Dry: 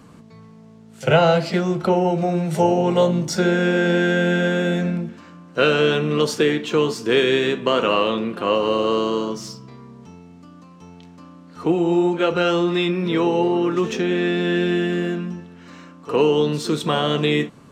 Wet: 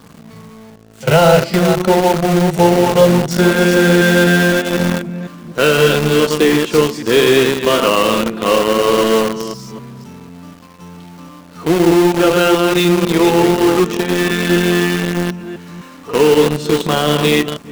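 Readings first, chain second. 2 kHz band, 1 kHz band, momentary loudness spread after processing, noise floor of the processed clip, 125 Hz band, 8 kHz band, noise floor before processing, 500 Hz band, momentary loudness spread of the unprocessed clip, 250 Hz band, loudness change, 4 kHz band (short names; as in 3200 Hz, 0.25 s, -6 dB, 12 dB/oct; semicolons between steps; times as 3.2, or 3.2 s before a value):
+7.5 dB, +6.5 dB, 11 LU, -39 dBFS, +6.5 dB, +12.5 dB, -45 dBFS, +6.5 dB, 8 LU, +6.5 dB, +6.5 dB, +7.0 dB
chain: reverse delay 0.251 s, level -5 dB; harmonic-percussive split harmonic +5 dB; in parallel at -8.5 dB: companded quantiser 2-bit; on the sum: gain -4 dB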